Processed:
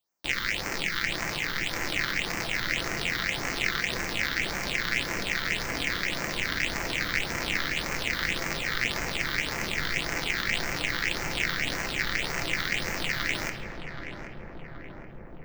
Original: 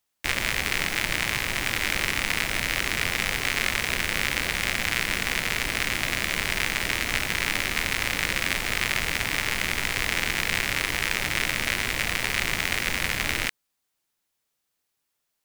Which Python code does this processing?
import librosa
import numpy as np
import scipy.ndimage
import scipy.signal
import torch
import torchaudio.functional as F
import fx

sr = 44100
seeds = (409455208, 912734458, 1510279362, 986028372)

y = fx.peak_eq(x, sr, hz=11000.0, db=-11.5, octaves=0.82)
y = fx.room_shoebox(y, sr, seeds[0], volume_m3=680.0, walls='mixed', distance_m=0.79)
y = fx.phaser_stages(y, sr, stages=6, low_hz=650.0, high_hz=3500.0, hz=1.8, feedback_pct=30)
y = fx.low_shelf(y, sr, hz=220.0, db=-10.5)
y = fx.echo_filtered(y, sr, ms=775, feedback_pct=80, hz=1200.0, wet_db=-6)